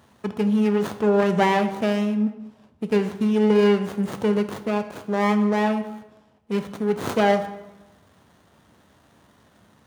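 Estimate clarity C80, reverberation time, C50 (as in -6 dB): 13.5 dB, 1.0 s, 11.0 dB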